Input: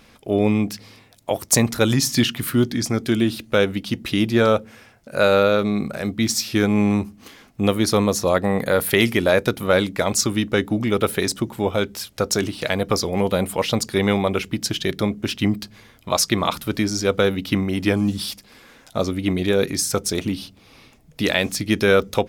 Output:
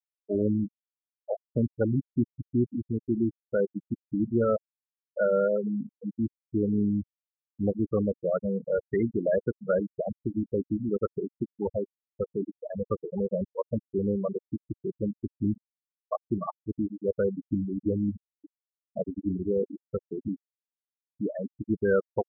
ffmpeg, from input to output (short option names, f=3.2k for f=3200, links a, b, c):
-filter_complex "[0:a]asettb=1/sr,asplit=3[a][b][c];[a]atrim=end=17.594[d];[b]atrim=start=17.59:end=19.93,asetpts=PTS-STARTPTS,afade=t=in:d=0.004:c=qsin,afade=t=out:st=2.336:d=0.004:c=qsin,aecho=1:1:571:0.224,atrim=end_sample=103194[e];[c]atrim=start=19.926[f];[d][e]acrossfade=d=0.004:c1=hsin:c2=qsin[g];[g][f]acrossfade=d=0.004:c1=qsin:c2=hsin,lowpass=1.7k,afftfilt=real='re*gte(hypot(re,im),0.398)':imag='im*gte(hypot(re,im),0.398)':win_size=1024:overlap=0.75,volume=-7dB"